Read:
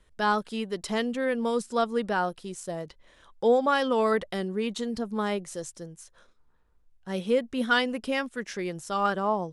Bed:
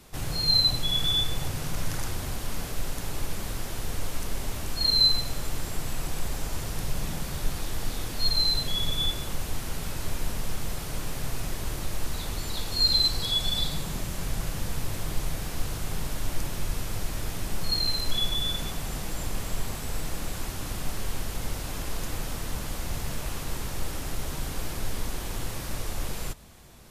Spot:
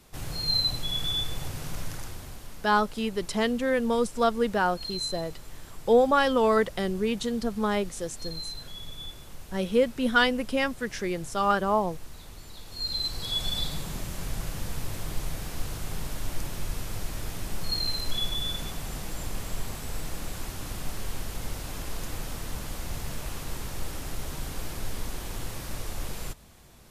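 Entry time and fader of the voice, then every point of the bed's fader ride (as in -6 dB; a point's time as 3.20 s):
2.45 s, +2.0 dB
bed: 1.74 s -4 dB
2.66 s -13 dB
12.60 s -13 dB
13.41 s -2.5 dB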